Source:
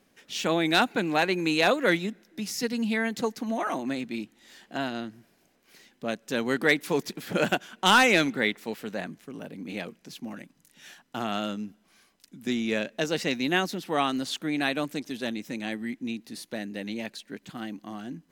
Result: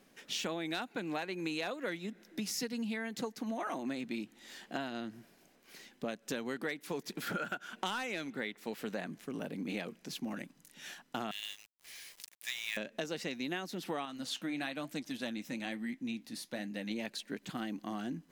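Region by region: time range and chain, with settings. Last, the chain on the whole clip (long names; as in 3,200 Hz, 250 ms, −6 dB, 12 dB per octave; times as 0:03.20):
0:07.22–0:07.70: parametric band 1,400 Hz +15 dB 0.24 octaves + downward compressor 1.5 to 1, threshold −35 dBFS
0:11.31–0:12.77: upward compression, threshold −39 dBFS + linear-phase brick-wall high-pass 1,600 Hz + log-companded quantiser 4 bits
0:14.05–0:16.91: parametric band 400 Hz −13 dB 0.22 octaves + flanger 1.1 Hz, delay 4.2 ms, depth 5.9 ms, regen −71%
whole clip: parametric band 85 Hz −12 dB 0.49 octaves; downward compressor 12 to 1, threshold −35 dBFS; level +1 dB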